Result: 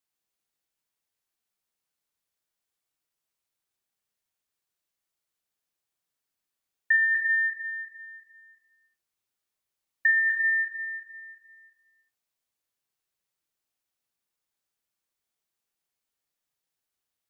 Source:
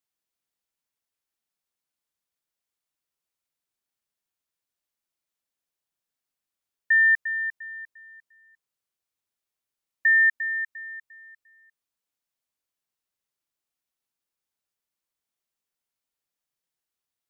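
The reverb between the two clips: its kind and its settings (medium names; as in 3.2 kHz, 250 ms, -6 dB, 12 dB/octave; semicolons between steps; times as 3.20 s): gated-style reverb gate 450 ms falling, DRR 3.5 dB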